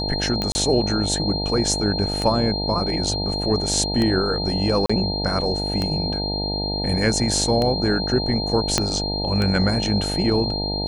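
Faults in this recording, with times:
buzz 50 Hz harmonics 18 -27 dBFS
tick 33 1/3 rpm -10 dBFS
tone 4200 Hz -26 dBFS
0.52–0.55 gap 30 ms
4.86–4.89 gap 35 ms
8.78 pop -3 dBFS

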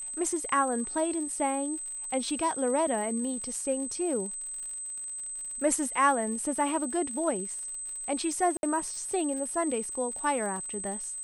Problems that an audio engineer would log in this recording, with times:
crackle 87/s -39 dBFS
tone 8200 Hz -35 dBFS
8.57–8.63 gap 61 ms

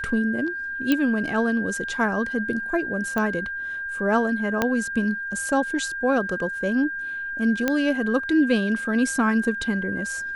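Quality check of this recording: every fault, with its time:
tone 1600 Hz -28 dBFS
0.92 pop -8 dBFS
3.18 pop -13 dBFS
4.62 pop -7 dBFS
7.68 pop -8 dBFS

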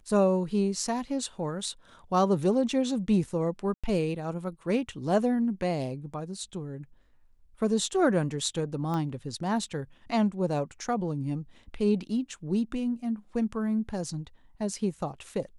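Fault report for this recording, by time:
3.74–3.84 gap 96 ms
8.94 pop -21 dBFS

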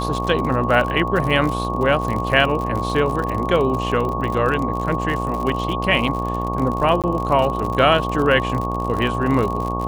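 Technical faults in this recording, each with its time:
buzz 60 Hz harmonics 20 -25 dBFS
crackle 59/s -24 dBFS
tone 1100 Hz -25 dBFS
7.02–7.04 gap 17 ms

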